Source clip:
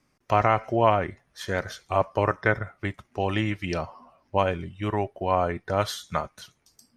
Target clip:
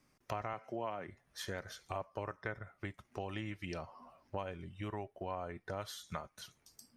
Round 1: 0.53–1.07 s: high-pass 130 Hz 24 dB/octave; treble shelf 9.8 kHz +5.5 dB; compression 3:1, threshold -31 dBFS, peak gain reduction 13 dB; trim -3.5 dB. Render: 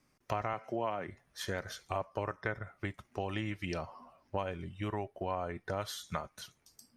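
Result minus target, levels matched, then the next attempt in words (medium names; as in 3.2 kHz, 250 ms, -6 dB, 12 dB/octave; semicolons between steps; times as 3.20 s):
compression: peak gain reduction -5 dB
0.53–1.07 s: high-pass 130 Hz 24 dB/octave; treble shelf 9.8 kHz +5.5 dB; compression 3:1, threshold -38.5 dBFS, peak gain reduction 18 dB; trim -3.5 dB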